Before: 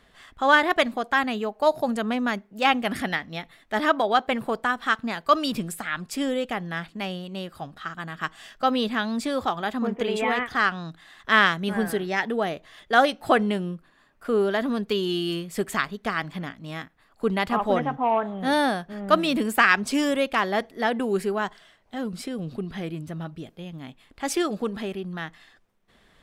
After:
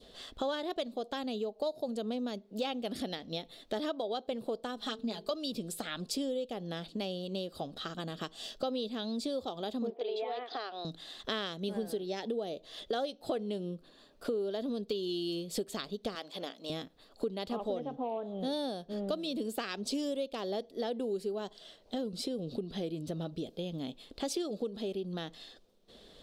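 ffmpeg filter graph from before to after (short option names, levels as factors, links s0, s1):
-filter_complex "[0:a]asettb=1/sr,asplit=3[s0][s1][s2];[s0]atrim=end=4.764[s3];[s1]atrim=start=4.76:end=5.31,asetpts=PTS-STARTPTS,afade=t=in:d=0.004:c=qsin,afade=t=out:st=0.546:d=0.004:c=qsin,bandreject=f=50:t=h:w=6,bandreject=f=100:t=h:w=6,bandreject=f=150:t=h:w=6,bandreject=f=200:t=h:w=6,bandreject=f=250:t=h:w=6,bandreject=f=300:t=h:w=6,bandreject=f=350:t=h:w=6,bandreject=f=400:t=h:w=6,bandreject=f=450:t=h:w=6,aecho=1:1:4.8:0.83,atrim=end_sample=24255[s4];[s2]atrim=start=5.306[s5];[s3][s4]acrossfade=d=0.004:c1=hsin:c2=qsin[s6];[s6][s5]acrossfade=d=0.004:c1=qsin:c2=hsin,asettb=1/sr,asplit=3[s7][s8][s9];[s7]atrim=end=9.904[s10];[s8]atrim=start=9.9:end=10.85,asetpts=PTS-STARTPTS,afade=t=in:d=0.004:c=qsin,afade=t=out:st=0.946:d=0.004:c=qsin,highpass=f=370:w=0.5412,highpass=f=370:w=1.3066,equalizer=f=510:t=q:w=4:g=-6,equalizer=f=720:t=q:w=4:g=7,equalizer=f=3000:t=q:w=4:g=-4,lowpass=f=4400:w=0.5412,lowpass=f=4400:w=1.3066,acompressor=threshold=0.0447:ratio=1.5:attack=3.2:release=140:knee=1:detection=peak[s11];[s9]atrim=start=10.846[s12];[s10][s11]acrossfade=d=0.004:c1=hsin:c2=qsin[s13];[s13][s12]acrossfade=d=0.004:c1=qsin:c2=hsin,asettb=1/sr,asplit=3[s14][s15][s16];[s14]atrim=end=16.154[s17];[s15]atrim=start=16.15:end=16.7,asetpts=PTS-STARTPTS,afade=t=in:d=0.004:c=qsin,afade=t=out:st=0.546:d=0.004:c=qsin,highpass=490,aeval=exprs='clip(val(0),-1,0.126)':c=same[s18];[s16]atrim=start=16.696[s19];[s17][s18]acrossfade=d=0.004:c1=hsin:c2=qsin[s20];[s20][s19]acrossfade=d=0.004:c1=qsin:c2=hsin,equalizer=f=125:t=o:w=1:g=-4,equalizer=f=250:t=o:w=1:g=3,equalizer=f=500:t=o:w=1:g=10,equalizer=f=1000:t=o:w=1:g=-5,equalizer=f=2000:t=o:w=1:g=-10,equalizer=f=4000:t=o:w=1:g=12,acompressor=threshold=0.02:ratio=5,adynamicequalizer=threshold=0.00224:dfrequency=1600:dqfactor=1.2:tfrequency=1600:tqfactor=1.2:attack=5:release=100:ratio=0.375:range=3:mode=cutabove:tftype=bell"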